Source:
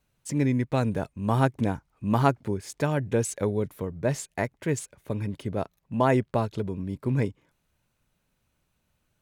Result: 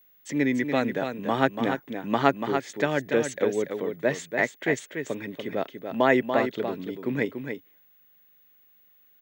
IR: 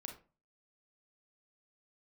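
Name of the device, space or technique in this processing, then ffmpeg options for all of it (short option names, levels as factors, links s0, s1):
old television with a line whistle: -af "highpass=f=190:w=0.5412,highpass=f=190:w=1.3066,equalizer=f=200:t=q:w=4:g=-7,equalizer=f=980:t=q:w=4:g=-5,equalizer=f=1900:t=q:w=4:g=9,equalizer=f=3400:t=q:w=4:g=6,equalizer=f=5000:t=q:w=4:g=-7,lowpass=f=6500:w=0.5412,lowpass=f=6500:w=1.3066,aeval=exprs='val(0)+0.00112*sin(2*PI*15625*n/s)':c=same,aecho=1:1:288:0.447,volume=1.33"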